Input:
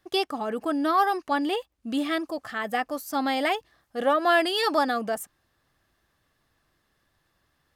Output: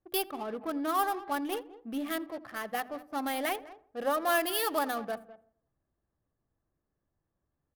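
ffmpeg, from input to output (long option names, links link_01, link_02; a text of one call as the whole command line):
ffmpeg -i in.wav -filter_complex "[0:a]asplit=2[link_01][link_02];[link_02]aecho=0:1:204:0.15[link_03];[link_01][link_03]amix=inputs=2:normalize=0,adynamicsmooth=sensitivity=5.5:basefreq=710,bandreject=frequency=50:width_type=h:width=6,bandreject=frequency=100:width_type=h:width=6,bandreject=frequency=150:width_type=h:width=6,bandreject=frequency=200:width_type=h:width=6,bandreject=frequency=250:width_type=h:width=6,bandreject=frequency=300:width_type=h:width=6,bandreject=frequency=350:width_type=h:width=6,asplit=2[link_04][link_05];[link_05]adelay=84,lowpass=frequency=1600:poles=1,volume=-19dB,asplit=2[link_06][link_07];[link_07]adelay=84,lowpass=frequency=1600:poles=1,volume=0.54,asplit=2[link_08][link_09];[link_09]adelay=84,lowpass=frequency=1600:poles=1,volume=0.54,asplit=2[link_10][link_11];[link_11]adelay=84,lowpass=frequency=1600:poles=1,volume=0.54[link_12];[link_06][link_08][link_10][link_12]amix=inputs=4:normalize=0[link_13];[link_04][link_13]amix=inputs=2:normalize=0,aexciter=amount=9.5:drive=2.8:freq=10000,volume=-7dB" out.wav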